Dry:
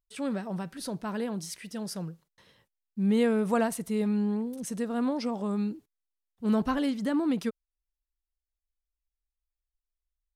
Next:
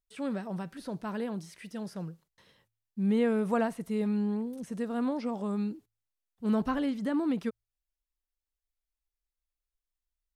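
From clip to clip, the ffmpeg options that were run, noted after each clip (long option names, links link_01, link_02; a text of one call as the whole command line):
ffmpeg -i in.wav -filter_complex "[0:a]acrossover=split=2900[link_01][link_02];[link_02]acompressor=threshold=-50dB:ratio=4:attack=1:release=60[link_03];[link_01][link_03]amix=inputs=2:normalize=0,bandreject=frequency=55.46:width_type=h:width=4,bandreject=frequency=110.92:width_type=h:width=4,volume=-2dB" out.wav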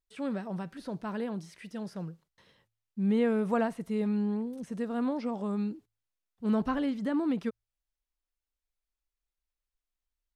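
ffmpeg -i in.wav -af "highshelf=frequency=8500:gain=-8.5" out.wav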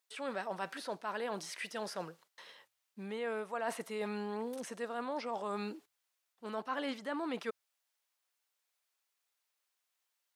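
ffmpeg -i in.wav -af "highpass=630,areverse,acompressor=threshold=-44dB:ratio=10,areverse,volume=10dB" out.wav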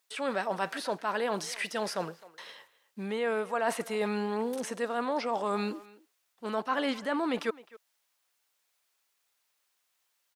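ffmpeg -i in.wav -filter_complex "[0:a]asplit=2[link_01][link_02];[link_02]adelay=260,highpass=300,lowpass=3400,asoftclip=type=hard:threshold=-31.5dB,volume=-19dB[link_03];[link_01][link_03]amix=inputs=2:normalize=0,volume=7.5dB" out.wav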